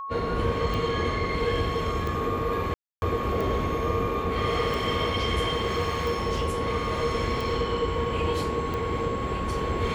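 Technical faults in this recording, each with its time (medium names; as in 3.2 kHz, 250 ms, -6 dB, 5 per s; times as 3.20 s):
tick 45 rpm
whine 1.1 kHz -32 dBFS
2.74–3.02 s: dropout 281 ms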